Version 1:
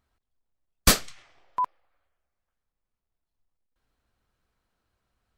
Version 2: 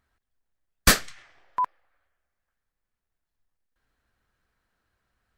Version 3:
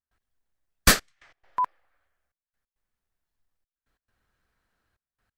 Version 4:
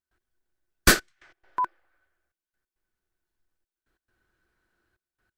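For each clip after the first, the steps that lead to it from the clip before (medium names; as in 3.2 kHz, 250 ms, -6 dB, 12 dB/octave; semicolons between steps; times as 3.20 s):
peaking EQ 1.7 kHz +7.5 dB 0.59 oct
trance gate ".xxxxxxxx..x" 136 bpm -24 dB
small resonant body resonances 350/1500 Hz, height 13 dB, ringing for 60 ms; trim -1 dB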